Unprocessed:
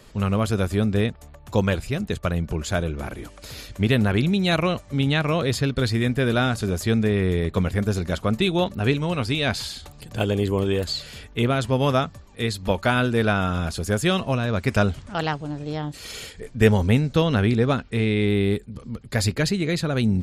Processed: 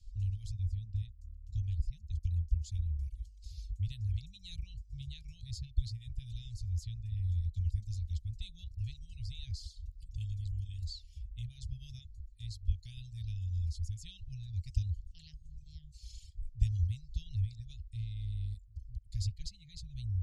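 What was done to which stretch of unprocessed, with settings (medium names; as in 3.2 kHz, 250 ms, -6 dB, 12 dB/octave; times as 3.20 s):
0.52–2.23 s: treble shelf 3 kHz -6.5 dB
whole clip: inverse Chebyshev band-stop 260–1500 Hz, stop band 70 dB; reverb removal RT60 0.99 s; low-pass 1.9 kHz 12 dB/octave; trim +6 dB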